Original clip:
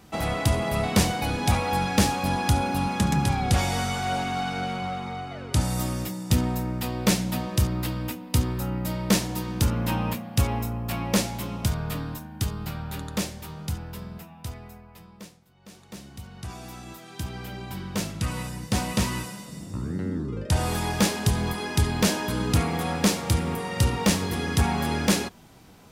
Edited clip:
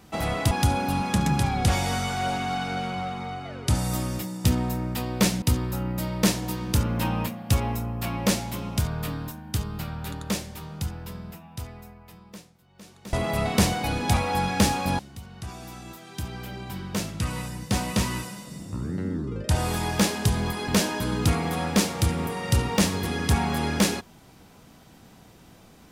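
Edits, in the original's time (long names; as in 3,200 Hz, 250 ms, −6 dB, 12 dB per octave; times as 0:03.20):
0:00.51–0:02.37: move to 0:16.00
0:07.28–0:08.29: remove
0:21.69–0:21.96: remove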